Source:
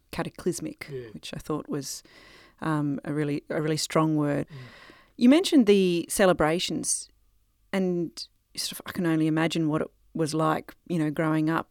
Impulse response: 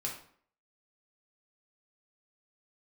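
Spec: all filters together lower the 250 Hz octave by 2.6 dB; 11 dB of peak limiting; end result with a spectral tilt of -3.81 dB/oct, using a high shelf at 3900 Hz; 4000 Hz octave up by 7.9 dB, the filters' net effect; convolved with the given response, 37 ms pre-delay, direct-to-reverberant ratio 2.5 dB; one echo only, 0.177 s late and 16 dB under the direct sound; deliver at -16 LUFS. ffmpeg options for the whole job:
-filter_complex "[0:a]equalizer=f=250:t=o:g=-3.5,highshelf=f=3.9k:g=7,equalizer=f=4k:t=o:g=5.5,alimiter=limit=-18dB:level=0:latency=1,aecho=1:1:177:0.158,asplit=2[a][b];[1:a]atrim=start_sample=2205,adelay=37[c];[b][c]afir=irnorm=-1:irlink=0,volume=-4.5dB[d];[a][d]amix=inputs=2:normalize=0,volume=11.5dB"

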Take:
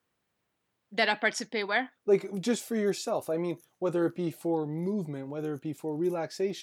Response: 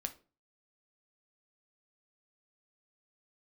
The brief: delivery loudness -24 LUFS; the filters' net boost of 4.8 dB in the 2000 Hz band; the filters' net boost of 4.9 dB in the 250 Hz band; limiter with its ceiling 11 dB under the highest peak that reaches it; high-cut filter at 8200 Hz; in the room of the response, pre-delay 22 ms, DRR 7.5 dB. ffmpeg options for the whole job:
-filter_complex "[0:a]lowpass=8.2k,equalizer=f=250:t=o:g=7,equalizer=f=2k:t=o:g=5.5,alimiter=limit=-18.5dB:level=0:latency=1,asplit=2[a][b];[1:a]atrim=start_sample=2205,adelay=22[c];[b][c]afir=irnorm=-1:irlink=0,volume=-6.5dB[d];[a][d]amix=inputs=2:normalize=0,volume=5dB"

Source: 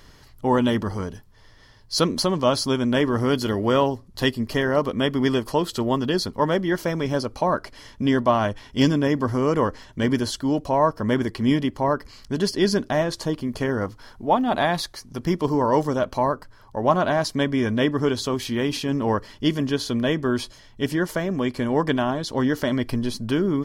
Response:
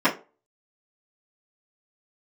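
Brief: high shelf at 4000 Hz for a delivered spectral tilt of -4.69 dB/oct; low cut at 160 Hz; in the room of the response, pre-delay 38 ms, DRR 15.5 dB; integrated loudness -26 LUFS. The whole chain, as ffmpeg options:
-filter_complex "[0:a]highpass=160,highshelf=f=4k:g=-6,asplit=2[a][b];[1:a]atrim=start_sample=2205,adelay=38[c];[b][c]afir=irnorm=-1:irlink=0,volume=-34dB[d];[a][d]amix=inputs=2:normalize=0,volume=-2.5dB"

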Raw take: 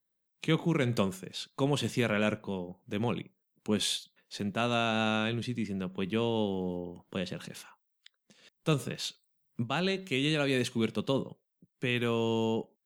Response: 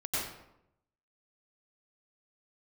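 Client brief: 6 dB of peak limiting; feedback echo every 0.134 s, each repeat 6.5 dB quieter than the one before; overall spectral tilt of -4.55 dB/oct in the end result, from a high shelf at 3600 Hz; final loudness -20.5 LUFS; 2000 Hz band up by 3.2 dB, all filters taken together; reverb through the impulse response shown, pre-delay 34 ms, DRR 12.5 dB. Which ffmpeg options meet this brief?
-filter_complex "[0:a]equalizer=f=2k:t=o:g=3,highshelf=f=3.6k:g=4,alimiter=limit=-18dB:level=0:latency=1,aecho=1:1:134|268|402|536|670|804:0.473|0.222|0.105|0.0491|0.0231|0.0109,asplit=2[a][b];[1:a]atrim=start_sample=2205,adelay=34[c];[b][c]afir=irnorm=-1:irlink=0,volume=-18.5dB[d];[a][d]amix=inputs=2:normalize=0,volume=10.5dB"

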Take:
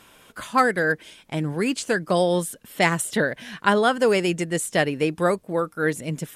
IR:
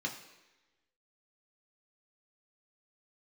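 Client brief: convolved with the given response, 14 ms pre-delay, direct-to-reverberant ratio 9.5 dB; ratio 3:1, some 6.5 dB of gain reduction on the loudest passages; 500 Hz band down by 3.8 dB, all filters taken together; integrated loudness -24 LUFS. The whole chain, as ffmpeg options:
-filter_complex "[0:a]equalizer=f=500:t=o:g=-4.5,acompressor=threshold=-23dB:ratio=3,asplit=2[a][b];[1:a]atrim=start_sample=2205,adelay=14[c];[b][c]afir=irnorm=-1:irlink=0,volume=-12.5dB[d];[a][d]amix=inputs=2:normalize=0,volume=3.5dB"

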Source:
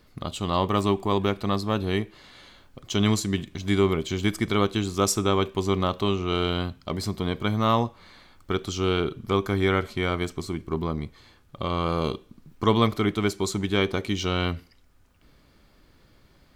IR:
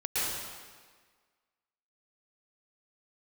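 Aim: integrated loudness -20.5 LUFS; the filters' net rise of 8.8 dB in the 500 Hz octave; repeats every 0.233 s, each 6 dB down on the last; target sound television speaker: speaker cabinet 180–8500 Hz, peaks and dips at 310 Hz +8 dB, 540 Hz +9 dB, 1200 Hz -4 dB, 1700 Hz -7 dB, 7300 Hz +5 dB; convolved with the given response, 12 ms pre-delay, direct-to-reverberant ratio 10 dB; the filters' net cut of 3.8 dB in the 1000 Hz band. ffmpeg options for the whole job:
-filter_complex "[0:a]equalizer=f=500:t=o:g=6.5,equalizer=f=1k:t=o:g=-4.5,aecho=1:1:233|466|699|932|1165|1398:0.501|0.251|0.125|0.0626|0.0313|0.0157,asplit=2[a][b];[1:a]atrim=start_sample=2205,adelay=12[c];[b][c]afir=irnorm=-1:irlink=0,volume=-19dB[d];[a][d]amix=inputs=2:normalize=0,highpass=f=180:w=0.5412,highpass=f=180:w=1.3066,equalizer=f=310:t=q:w=4:g=8,equalizer=f=540:t=q:w=4:g=9,equalizer=f=1.2k:t=q:w=4:g=-4,equalizer=f=1.7k:t=q:w=4:g=-7,equalizer=f=7.3k:t=q:w=4:g=5,lowpass=f=8.5k:w=0.5412,lowpass=f=8.5k:w=1.3066,volume=-1dB"

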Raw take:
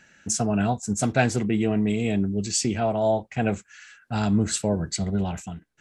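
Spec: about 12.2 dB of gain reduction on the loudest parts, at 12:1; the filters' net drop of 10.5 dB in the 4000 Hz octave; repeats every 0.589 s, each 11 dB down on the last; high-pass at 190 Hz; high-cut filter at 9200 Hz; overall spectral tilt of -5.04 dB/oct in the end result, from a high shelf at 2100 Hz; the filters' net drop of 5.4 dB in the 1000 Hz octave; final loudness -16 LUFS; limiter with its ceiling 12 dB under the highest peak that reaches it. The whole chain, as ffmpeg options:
-af "highpass=190,lowpass=9.2k,equalizer=f=1k:t=o:g=-7.5,highshelf=f=2.1k:g=-6.5,equalizer=f=4k:t=o:g=-6.5,acompressor=threshold=-33dB:ratio=12,alimiter=level_in=9.5dB:limit=-24dB:level=0:latency=1,volume=-9.5dB,aecho=1:1:589|1178|1767:0.282|0.0789|0.0221,volume=26.5dB"

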